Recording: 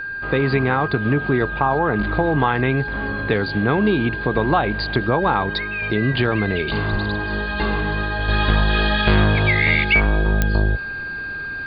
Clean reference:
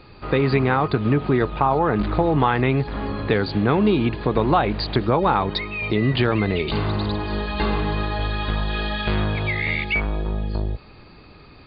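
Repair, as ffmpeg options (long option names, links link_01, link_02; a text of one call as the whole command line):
ffmpeg -i in.wav -filter_complex "[0:a]adeclick=threshold=4,bandreject=frequency=1600:width=30,asplit=3[link_01][link_02][link_03];[link_01]afade=type=out:start_time=6.91:duration=0.02[link_04];[link_02]highpass=frequency=140:width=0.5412,highpass=frequency=140:width=1.3066,afade=type=in:start_time=6.91:duration=0.02,afade=type=out:start_time=7.03:duration=0.02[link_05];[link_03]afade=type=in:start_time=7.03:duration=0.02[link_06];[link_04][link_05][link_06]amix=inputs=3:normalize=0,asetnsamples=nb_out_samples=441:pad=0,asendcmd='8.28 volume volume -6.5dB',volume=0dB" out.wav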